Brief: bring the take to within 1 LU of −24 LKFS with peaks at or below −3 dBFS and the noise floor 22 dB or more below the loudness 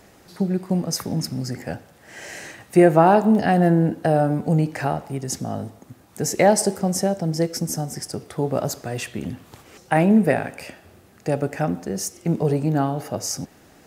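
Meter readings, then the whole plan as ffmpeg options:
integrated loudness −21.5 LKFS; sample peak −1.5 dBFS; target loudness −24.0 LKFS
→ -af "volume=-2.5dB"

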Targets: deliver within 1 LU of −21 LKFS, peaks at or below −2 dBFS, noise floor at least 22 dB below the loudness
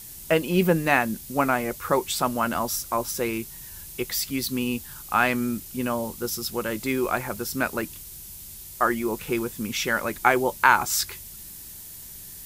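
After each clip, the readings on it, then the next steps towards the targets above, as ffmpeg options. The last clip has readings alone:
background noise floor −42 dBFS; target noise floor −47 dBFS; integrated loudness −25.0 LKFS; sample peak −2.0 dBFS; target loudness −21.0 LKFS
→ -af "afftdn=noise_reduction=6:noise_floor=-42"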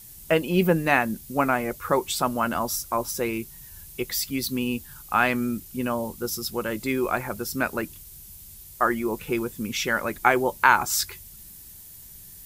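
background noise floor −45 dBFS; target noise floor −47 dBFS
→ -af "afftdn=noise_reduction=6:noise_floor=-45"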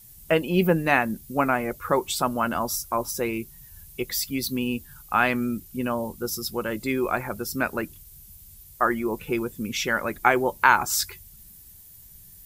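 background noise floor −49 dBFS; integrated loudness −25.0 LKFS; sample peak −2.0 dBFS; target loudness −21.0 LKFS
→ -af "volume=4dB,alimiter=limit=-2dB:level=0:latency=1"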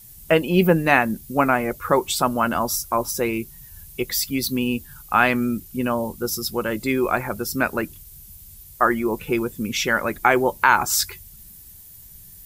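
integrated loudness −21.5 LKFS; sample peak −2.0 dBFS; background noise floor −45 dBFS

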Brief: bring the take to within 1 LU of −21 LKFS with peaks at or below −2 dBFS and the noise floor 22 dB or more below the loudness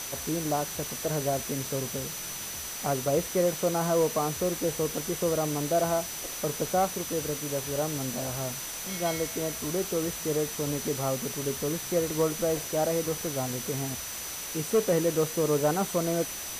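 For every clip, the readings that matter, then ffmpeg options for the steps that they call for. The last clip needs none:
interfering tone 6,000 Hz; level of the tone −40 dBFS; background noise floor −37 dBFS; target noise floor −51 dBFS; integrated loudness −29.0 LKFS; sample peak −15.0 dBFS; target loudness −21.0 LKFS
→ -af "bandreject=frequency=6000:width=30"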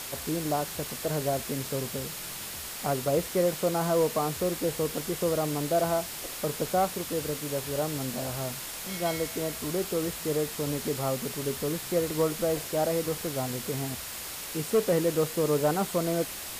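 interfering tone none found; background noise floor −39 dBFS; target noise floor −52 dBFS
→ -af "afftdn=noise_reduction=13:noise_floor=-39"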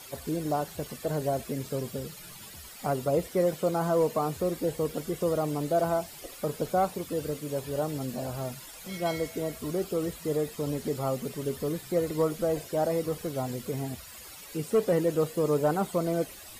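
background noise floor −46 dBFS; target noise floor −52 dBFS
→ -af "afftdn=noise_reduction=6:noise_floor=-46"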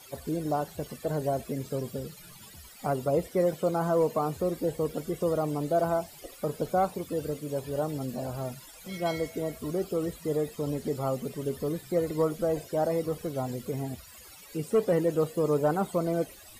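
background noise floor −50 dBFS; target noise floor −52 dBFS
→ -af "afftdn=noise_reduction=6:noise_floor=-50"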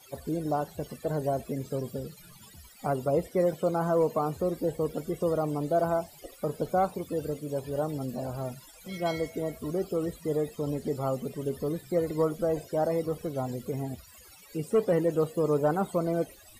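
background noise floor −53 dBFS; integrated loudness −30.0 LKFS; sample peak −16.5 dBFS; target loudness −21.0 LKFS
→ -af "volume=9dB"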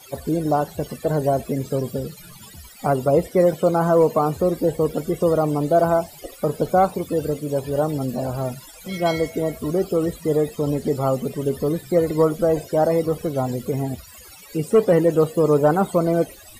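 integrated loudness −21.0 LKFS; sample peak −7.5 dBFS; background noise floor −44 dBFS

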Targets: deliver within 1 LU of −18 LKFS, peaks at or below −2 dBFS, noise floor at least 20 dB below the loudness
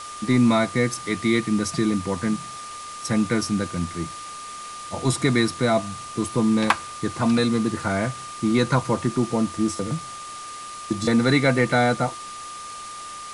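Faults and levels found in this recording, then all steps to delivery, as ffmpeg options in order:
interfering tone 1,200 Hz; level of the tone −35 dBFS; background noise floor −37 dBFS; target noise floor −43 dBFS; integrated loudness −23.0 LKFS; sample peak −4.0 dBFS; target loudness −18.0 LKFS
→ -af "bandreject=frequency=1200:width=30"
-af "afftdn=noise_reduction=6:noise_floor=-37"
-af "volume=5dB,alimiter=limit=-2dB:level=0:latency=1"

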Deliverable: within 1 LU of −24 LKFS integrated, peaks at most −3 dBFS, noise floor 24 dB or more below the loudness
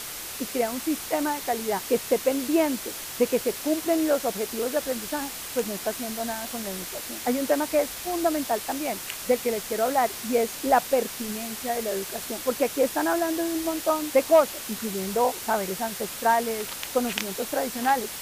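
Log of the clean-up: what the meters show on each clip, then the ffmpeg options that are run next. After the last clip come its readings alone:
background noise floor −36 dBFS; target noise floor −50 dBFS; integrated loudness −26.0 LKFS; sample peak −9.0 dBFS; target loudness −24.0 LKFS
→ -af "afftdn=noise_reduction=14:noise_floor=-36"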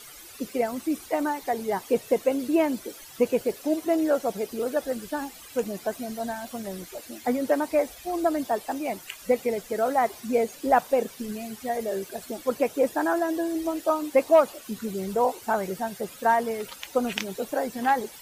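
background noise floor −46 dBFS; target noise floor −51 dBFS
→ -af "afftdn=noise_reduction=6:noise_floor=-46"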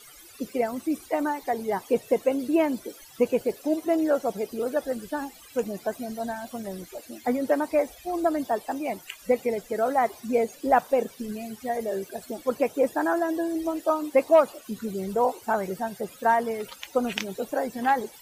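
background noise floor −49 dBFS; target noise floor −51 dBFS
→ -af "afftdn=noise_reduction=6:noise_floor=-49"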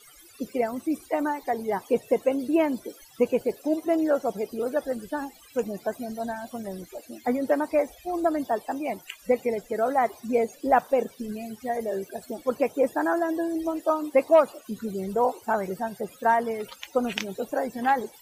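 background noise floor −52 dBFS; integrated loudness −27.0 LKFS; sample peak −9.0 dBFS; target loudness −24.0 LKFS
→ -af "volume=3dB"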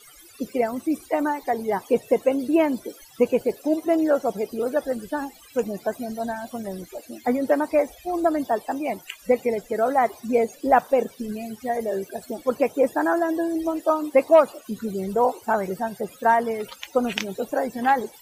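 integrated loudness −24.0 LKFS; sample peak −6.0 dBFS; background noise floor −49 dBFS

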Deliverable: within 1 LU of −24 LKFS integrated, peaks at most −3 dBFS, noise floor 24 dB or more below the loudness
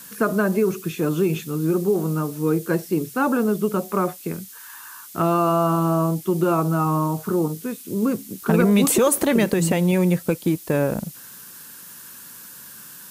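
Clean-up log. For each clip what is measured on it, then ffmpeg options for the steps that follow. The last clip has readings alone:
background noise floor −42 dBFS; target noise floor −46 dBFS; integrated loudness −21.5 LKFS; sample peak −6.0 dBFS; target loudness −24.0 LKFS
→ -af "afftdn=noise_reduction=6:noise_floor=-42"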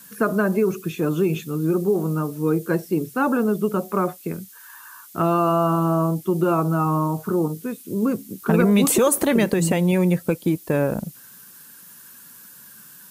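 background noise floor −46 dBFS; integrated loudness −21.5 LKFS; sample peak −6.0 dBFS; target loudness −24.0 LKFS
→ -af "volume=-2.5dB"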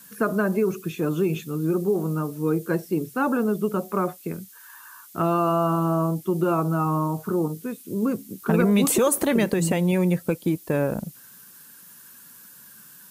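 integrated loudness −24.0 LKFS; sample peak −8.5 dBFS; background noise floor −48 dBFS

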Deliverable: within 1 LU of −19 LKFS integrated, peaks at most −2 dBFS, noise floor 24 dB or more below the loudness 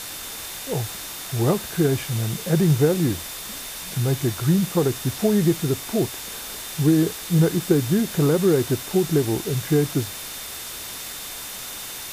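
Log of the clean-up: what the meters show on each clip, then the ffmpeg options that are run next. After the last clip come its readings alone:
interfering tone 3,600 Hz; level of the tone −43 dBFS; background noise floor −35 dBFS; target noise floor −47 dBFS; integrated loudness −23.0 LKFS; sample peak −6.0 dBFS; target loudness −19.0 LKFS
→ -af "bandreject=frequency=3600:width=30"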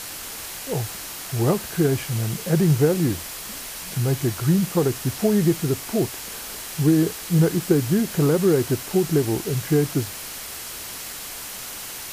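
interfering tone none found; background noise floor −35 dBFS; target noise floor −47 dBFS
→ -af "afftdn=noise_reduction=12:noise_floor=-35"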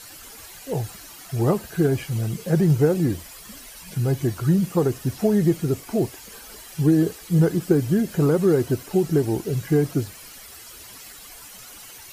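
background noise floor −43 dBFS; target noise floor −47 dBFS
→ -af "afftdn=noise_reduction=6:noise_floor=-43"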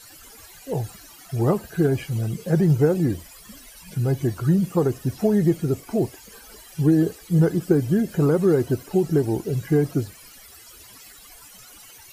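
background noise floor −47 dBFS; integrated loudness −22.5 LKFS; sample peak −6.5 dBFS; target loudness −19.0 LKFS
→ -af "volume=3.5dB"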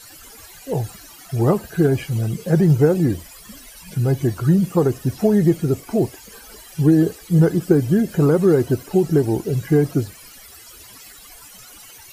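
integrated loudness −19.0 LKFS; sample peak −3.0 dBFS; background noise floor −43 dBFS

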